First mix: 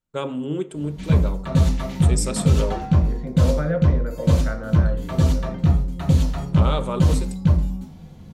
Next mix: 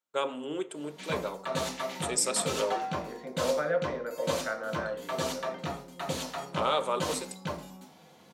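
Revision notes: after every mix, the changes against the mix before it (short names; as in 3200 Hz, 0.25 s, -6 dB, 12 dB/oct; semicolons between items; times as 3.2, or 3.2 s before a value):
master: add HPF 520 Hz 12 dB/oct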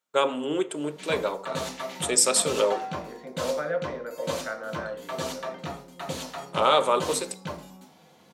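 first voice +7.5 dB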